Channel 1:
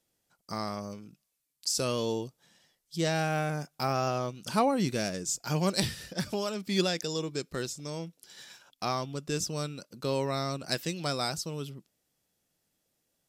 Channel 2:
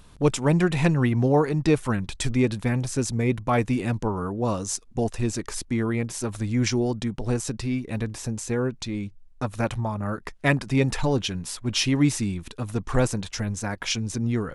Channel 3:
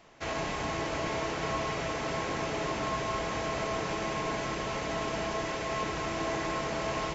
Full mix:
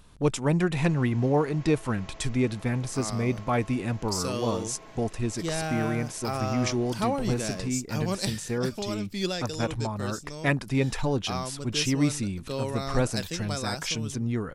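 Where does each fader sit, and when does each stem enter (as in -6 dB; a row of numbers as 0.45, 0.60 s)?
-2.0, -3.5, -16.5 dB; 2.45, 0.00, 0.55 s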